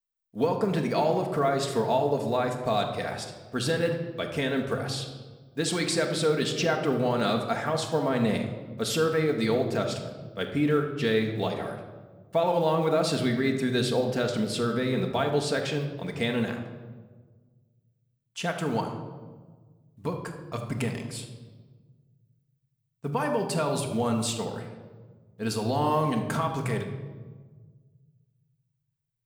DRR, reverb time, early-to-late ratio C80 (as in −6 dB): 2.5 dB, 1.4 s, 9.0 dB